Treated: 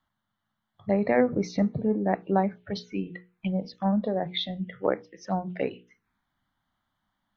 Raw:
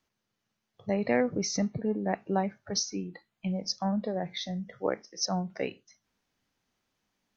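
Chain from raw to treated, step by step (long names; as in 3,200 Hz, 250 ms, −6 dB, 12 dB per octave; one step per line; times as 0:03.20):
high shelf with overshoot 4,200 Hz −10 dB, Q 3
phaser swept by the level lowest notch 440 Hz, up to 3,000 Hz, full sweep at −27 dBFS
mains-hum notches 60/120/180/240/300/360/420/480 Hz
level +5 dB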